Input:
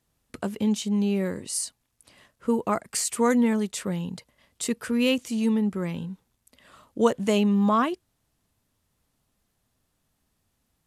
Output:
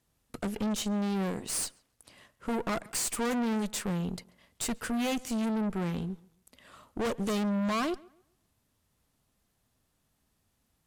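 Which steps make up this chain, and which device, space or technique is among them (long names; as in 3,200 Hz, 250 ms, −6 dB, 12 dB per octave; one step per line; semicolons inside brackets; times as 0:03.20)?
rockabilly slapback (tube saturation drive 32 dB, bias 0.8; tape delay 137 ms, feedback 30%, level −21.5 dB, low-pass 2,600 Hz)
level +4 dB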